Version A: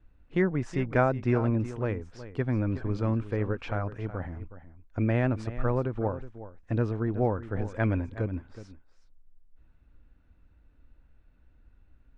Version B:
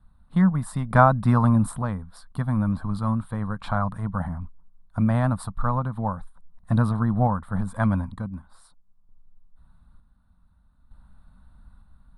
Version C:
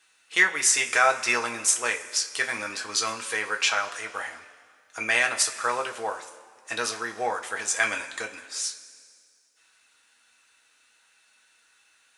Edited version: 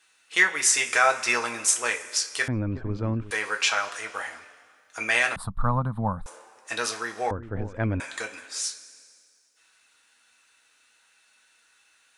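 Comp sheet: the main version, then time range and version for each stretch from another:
C
0:02.48–0:03.31: punch in from A
0:05.36–0:06.26: punch in from B
0:07.31–0:08.00: punch in from A

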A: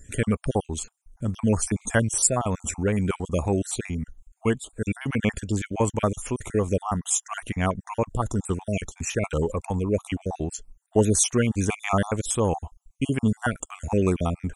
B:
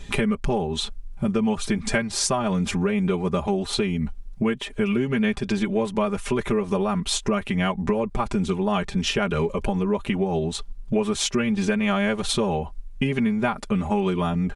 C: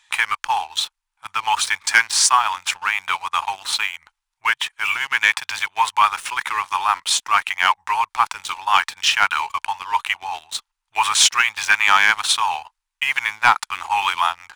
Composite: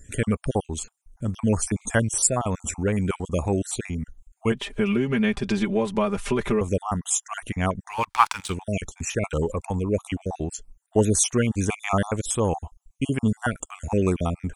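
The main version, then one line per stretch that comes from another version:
A
0:04.52–0:06.61: punch in from B
0:08.00–0:08.47: punch in from C, crossfade 0.24 s

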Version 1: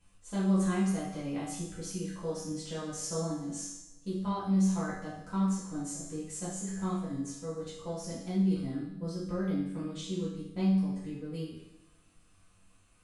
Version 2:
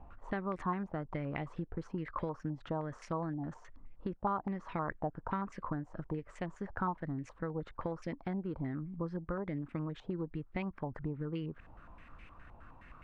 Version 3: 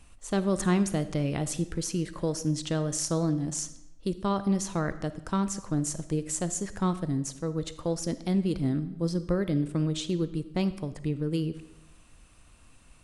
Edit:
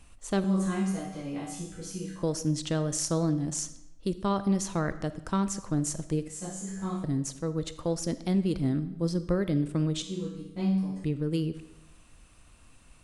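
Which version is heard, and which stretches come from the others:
3
0:00.44–0:02.23: punch in from 1
0:06.28–0:07.04: punch in from 1
0:10.02–0:11.04: punch in from 1
not used: 2

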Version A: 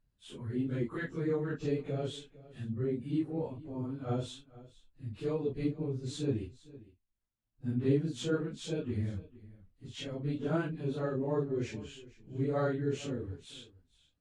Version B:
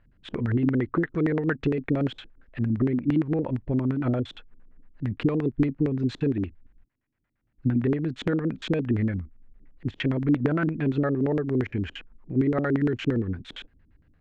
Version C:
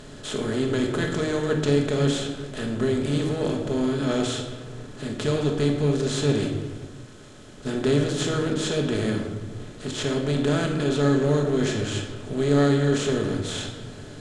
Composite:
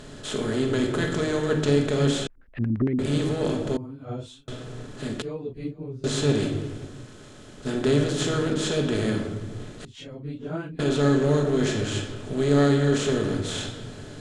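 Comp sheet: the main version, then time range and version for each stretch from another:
C
0:02.27–0:02.99: punch in from B
0:03.77–0:04.48: punch in from A
0:05.22–0:06.04: punch in from A
0:09.85–0:10.79: punch in from A

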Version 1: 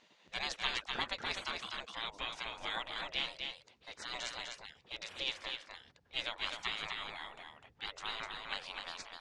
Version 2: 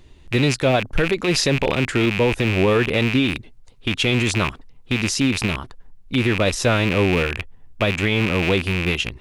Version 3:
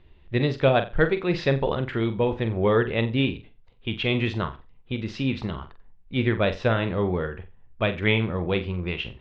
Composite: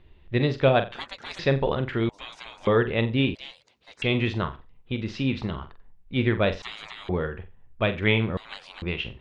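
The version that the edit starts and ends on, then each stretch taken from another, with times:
3
0:00.92–0:01.39: punch in from 1
0:02.09–0:02.67: punch in from 1
0:03.35–0:04.02: punch in from 1
0:06.62–0:07.09: punch in from 1
0:08.37–0:08.82: punch in from 1
not used: 2

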